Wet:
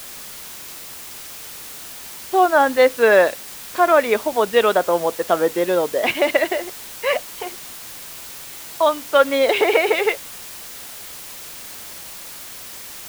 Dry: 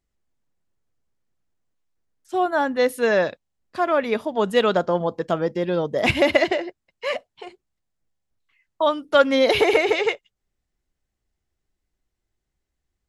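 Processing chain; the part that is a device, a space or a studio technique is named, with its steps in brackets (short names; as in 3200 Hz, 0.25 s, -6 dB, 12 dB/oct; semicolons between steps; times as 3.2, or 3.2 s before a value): dictaphone (BPF 360–3600 Hz; AGC; wow and flutter; white noise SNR 15 dB); gain -1 dB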